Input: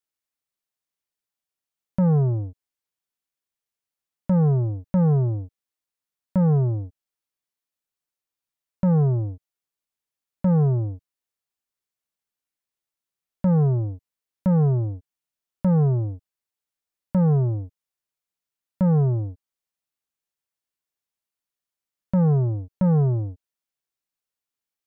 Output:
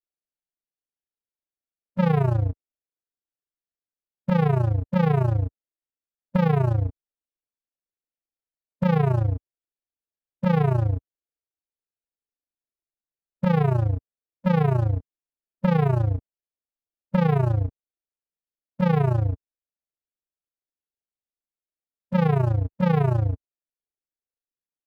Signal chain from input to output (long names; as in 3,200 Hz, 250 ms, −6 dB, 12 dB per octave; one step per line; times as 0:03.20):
adaptive Wiener filter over 41 samples
parametric band 140 Hz −8.5 dB 1.7 octaves
harmonic and percussive parts rebalanced harmonic +9 dB
dynamic equaliser 260 Hz, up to −6 dB, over −31 dBFS, Q 0.75
downward compressor 3 to 1, threshold −27 dBFS, peak gain reduction 7 dB
leveller curve on the samples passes 3
amplitude modulation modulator 28 Hz, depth 65%
level +3.5 dB